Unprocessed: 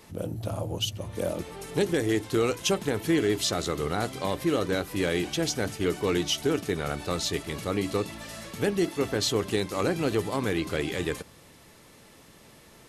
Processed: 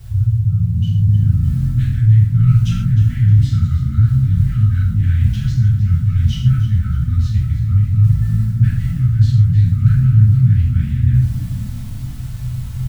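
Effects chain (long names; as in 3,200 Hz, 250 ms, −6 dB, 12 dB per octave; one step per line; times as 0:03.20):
adaptive Wiener filter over 15 samples
brick-wall band-stop 130–1,200 Hz
background noise blue −41 dBFS
spectral tilt −4.5 dB per octave
reversed playback
downward compressor 6 to 1, threshold −34 dBFS, peak gain reduction 17 dB
reversed playback
low shelf with overshoot 180 Hz +9 dB, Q 3
echo with shifted repeats 309 ms, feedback 35%, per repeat +57 Hz, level −13.5 dB
reverb whose tail is shaped and stops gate 180 ms falling, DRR −7 dB
level +1.5 dB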